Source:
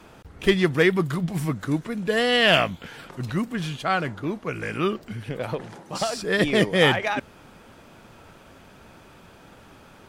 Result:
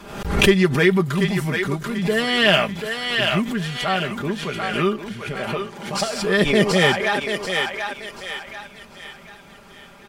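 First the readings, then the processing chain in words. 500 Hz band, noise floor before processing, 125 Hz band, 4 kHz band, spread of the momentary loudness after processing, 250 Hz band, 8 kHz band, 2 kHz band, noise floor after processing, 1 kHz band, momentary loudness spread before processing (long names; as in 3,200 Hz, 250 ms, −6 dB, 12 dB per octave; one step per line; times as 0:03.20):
+3.0 dB, −50 dBFS, +3.5 dB, +4.0 dB, 15 LU, +4.0 dB, +6.5 dB, +4.0 dB, −45 dBFS, +3.0 dB, 14 LU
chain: comb filter 5 ms
feedback echo with a high-pass in the loop 737 ms, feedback 43%, high-pass 660 Hz, level −3.5 dB
background raised ahead of every attack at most 67 dB per second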